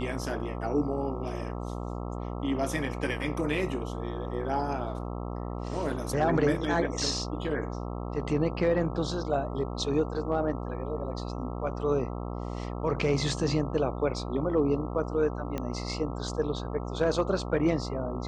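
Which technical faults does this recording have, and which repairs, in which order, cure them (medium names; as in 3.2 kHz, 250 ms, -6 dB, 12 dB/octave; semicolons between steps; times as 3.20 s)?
buzz 60 Hz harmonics 22 -35 dBFS
15.58 s: pop -19 dBFS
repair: de-click; de-hum 60 Hz, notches 22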